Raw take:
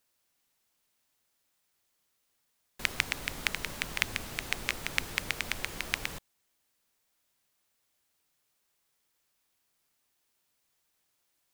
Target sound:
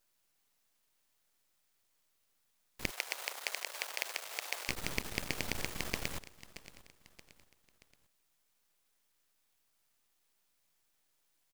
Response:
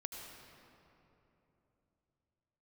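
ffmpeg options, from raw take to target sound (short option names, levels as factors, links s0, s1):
-filter_complex "[0:a]aeval=exprs='max(val(0),0)':c=same,aecho=1:1:627|1254|1881:0.106|0.0455|0.0196,asoftclip=type=tanh:threshold=0.168,asplit=3[s0][s1][s2];[s0]afade=t=out:st=2.89:d=0.02[s3];[s1]highpass=f=540:w=0.5412,highpass=f=540:w=1.3066,afade=t=in:st=2.89:d=0.02,afade=t=out:st=4.68:d=0.02[s4];[s2]afade=t=in:st=4.68:d=0.02[s5];[s3][s4][s5]amix=inputs=3:normalize=0,volume=1.41"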